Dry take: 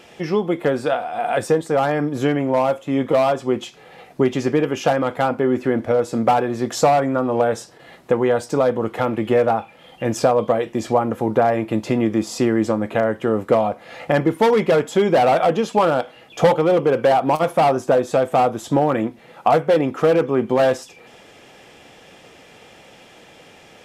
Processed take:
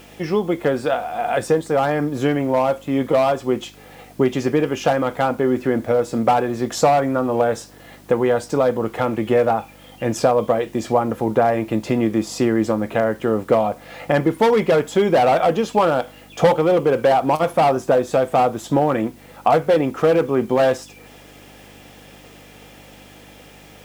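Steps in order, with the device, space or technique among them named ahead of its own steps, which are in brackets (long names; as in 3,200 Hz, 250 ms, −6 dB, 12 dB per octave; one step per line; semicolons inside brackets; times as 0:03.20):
video cassette with head-switching buzz (hum with harmonics 50 Hz, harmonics 6, −49 dBFS −1 dB per octave; white noise bed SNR 35 dB)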